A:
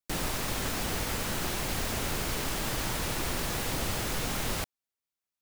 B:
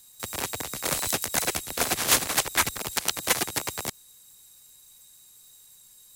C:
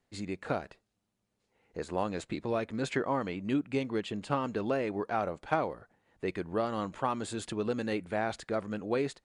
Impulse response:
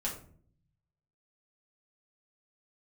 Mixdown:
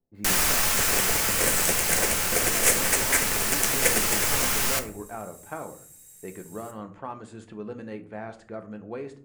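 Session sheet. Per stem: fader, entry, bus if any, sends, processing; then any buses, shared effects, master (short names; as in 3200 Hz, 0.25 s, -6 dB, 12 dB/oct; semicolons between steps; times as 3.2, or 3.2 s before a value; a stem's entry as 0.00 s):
0.0 dB, 0.15 s, send -4.5 dB, tilt shelf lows -8 dB, about 900 Hz
-6.0 dB, 0.55 s, send -3 dB, graphic EQ 500/1000/2000/4000/8000 Hz +9/-11/+9/-7/+7 dB
-10.0 dB, 0.00 s, send -5.5 dB, low-pass opened by the level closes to 520 Hz, open at -31.5 dBFS; high shelf 4100 Hz -6.5 dB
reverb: on, RT60 0.50 s, pre-delay 5 ms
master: vocal rider 2 s; bell 3700 Hz -6.5 dB 0.76 oct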